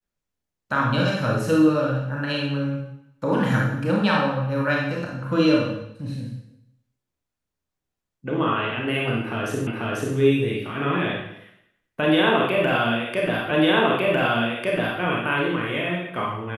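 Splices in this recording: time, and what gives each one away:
9.67 s: repeat of the last 0.49 s
13.51 s: repeat of the last 1.5 s

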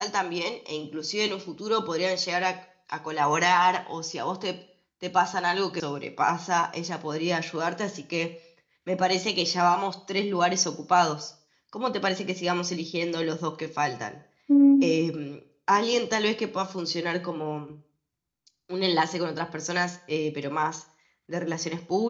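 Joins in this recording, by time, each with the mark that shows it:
5.80 s: sound stops dead

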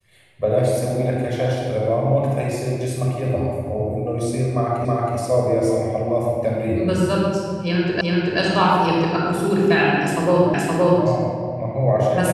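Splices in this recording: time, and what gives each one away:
4.85 s: repeat of the last 0.32 s
8.01 s: repeat of the last 0.38 s
10.54 s: repeat of the last 0.52 s

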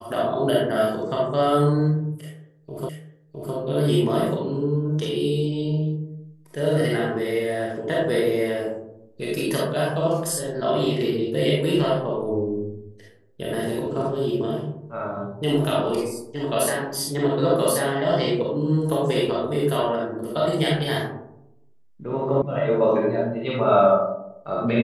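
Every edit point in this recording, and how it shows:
2.89 s: repeat of the last 0.66 s
22.42 s: sound stops dead

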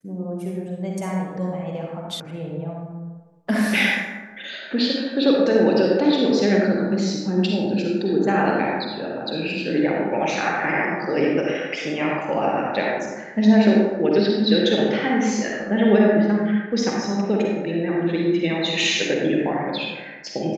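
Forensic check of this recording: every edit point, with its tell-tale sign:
2.20 s: sound stops dead

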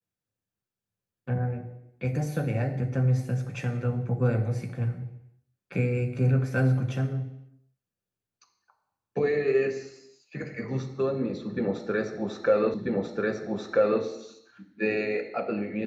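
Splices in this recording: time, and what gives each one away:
12.74 s: repeat of the last 1.29 s

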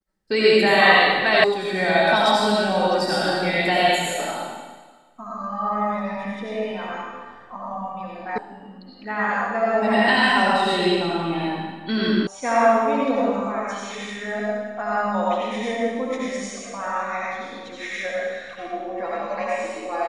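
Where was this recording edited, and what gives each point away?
1.44 s: sound stops dead
8.38 s: sound stops dead
12.27 s: sound stops dead

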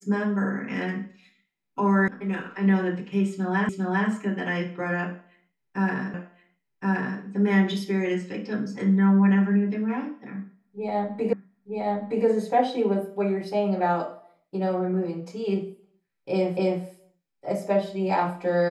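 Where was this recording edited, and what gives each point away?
2.08 s: sound stops dead
3.69 s: repeat of the last 0.4 s
6.14 s: repeat of the last 1.07 s
11.33 s: repeat of the last 0.92 s
16.57 s: repeat of the last 0.26 s

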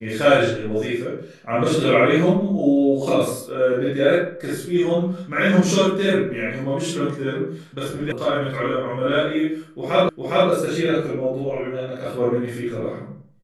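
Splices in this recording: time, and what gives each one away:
8.12 s: sound stops dead
10.09 s: repeat of the last 0.41 s

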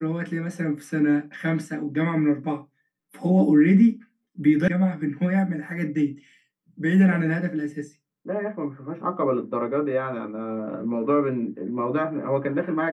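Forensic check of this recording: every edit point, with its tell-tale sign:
4.68 s: sound stops dead

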